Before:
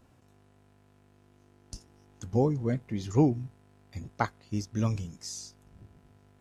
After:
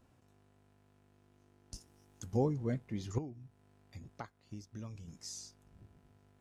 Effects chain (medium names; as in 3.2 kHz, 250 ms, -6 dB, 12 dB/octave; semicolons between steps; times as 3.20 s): 1.74–2.37 s: treble shelf 6.7 kHz +11 dB; 3.18–5.08 s: compression 3:1, threshold -40 dBFS, peak gain reduction 16 dB; trim -6 dB